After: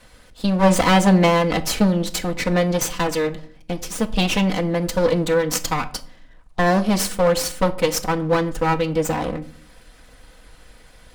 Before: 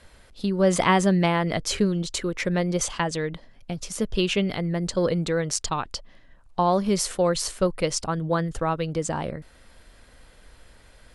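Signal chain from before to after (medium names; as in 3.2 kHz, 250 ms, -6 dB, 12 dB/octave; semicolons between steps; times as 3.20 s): comb filter that takes the minimum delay 4 ms; reverberation RT60 0.50 s, pre-delay 6 ms, DRR 10.5 dB; trim +5 dB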